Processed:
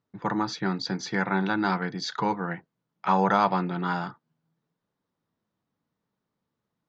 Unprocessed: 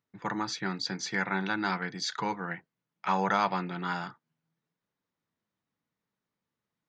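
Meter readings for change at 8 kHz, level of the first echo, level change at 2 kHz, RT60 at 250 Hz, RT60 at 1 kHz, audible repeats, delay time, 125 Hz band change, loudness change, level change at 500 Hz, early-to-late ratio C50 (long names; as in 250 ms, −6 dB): can't be measured, no echo audible, +1.5 dB, no reverb audible, no reverb audible, no echo audible, no echo audible, +7.0 dB, +4.5 dB, +6.5 dB, no reverb audible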